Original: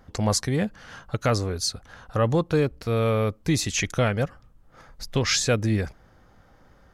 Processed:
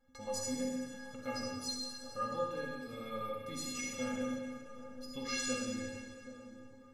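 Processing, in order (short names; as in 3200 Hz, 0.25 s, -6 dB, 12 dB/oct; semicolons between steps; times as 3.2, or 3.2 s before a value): metallic resonator 250 Hz, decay 0.61 s, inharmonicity 0.03; split-band echo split 1300 Hz, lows 0.777 s, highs 0.227 s, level -13 dB; reverb RT60 1.5 s, pre-delay 42 ms, DRR -1 dB; gain +1 dB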